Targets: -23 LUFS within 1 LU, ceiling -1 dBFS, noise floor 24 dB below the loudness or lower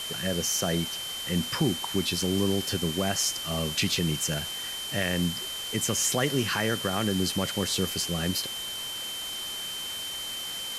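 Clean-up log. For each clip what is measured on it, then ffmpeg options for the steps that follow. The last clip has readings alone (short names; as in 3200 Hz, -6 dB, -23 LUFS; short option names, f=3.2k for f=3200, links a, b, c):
steady tone 3100 Hz; tone level -34 dBFS; noise floor -35 dBFS; noise floor target -52 dBFS; loudness -28.0 LUFS; peak -12.5 dBFS; loudness target -23.0 LUFS
-> -af "bandreject=f=3.1k:w=30"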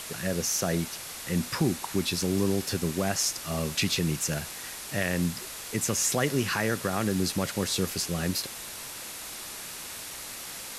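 steady tone none; noise floor -40 dBFS; noise floor target -53 dBFS
-> -af "afftdn=nr=13:nf=-40"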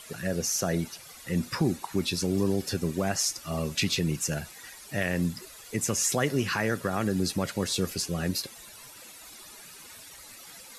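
noise floor -48 dBFS; noise floor target -53 dBFS
-> -af "afftdn=nr=6:nf=-48"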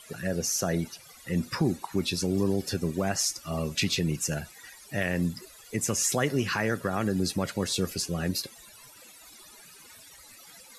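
noise floor -51 dBFS; noise floor target -53 dBFS
-> -af "afftdn=nr=6:nf=-51"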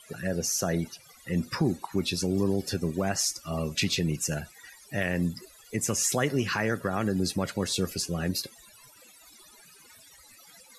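noise floor -55 dBFS; loudness -29.0 LUFS; peak -13.5 dBFS; loudness target -23.0 LUFS
-> -af "volume=6dB"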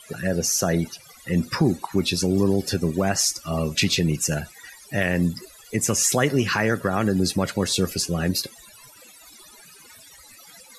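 loudness -23.0 LUFS; peak -7.5 dBFS; noise floor -49 dBFS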